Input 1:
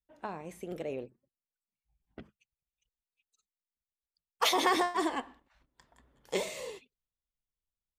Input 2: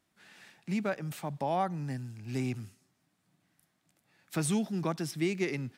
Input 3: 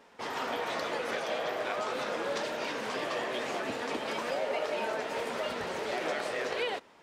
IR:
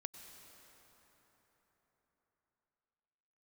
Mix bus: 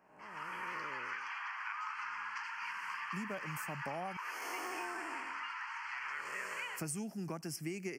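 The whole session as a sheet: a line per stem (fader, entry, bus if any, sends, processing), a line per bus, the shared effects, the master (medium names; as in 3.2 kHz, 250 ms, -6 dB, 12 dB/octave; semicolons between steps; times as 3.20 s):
-9.5 dB, 0.00 s, no send, spectral blur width 342 ms; de-esser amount 90%
-5.5 dB, 2.45 s, muted 4.17–6.71 s, no send, none
-12.5 dB, 0.00 s, no send, steep high-pass 930 Hz 72 dB/octave; level rider gain up to 11 dB; low-pass 2.6 kHz 12 dB/octave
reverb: none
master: Butterworth band-stop 3.7 kHz, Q 2; treble shelf 4.4 kHz +8.5 dB; compression, threshold -37 dBFS, peak gain reduction 8.5 dB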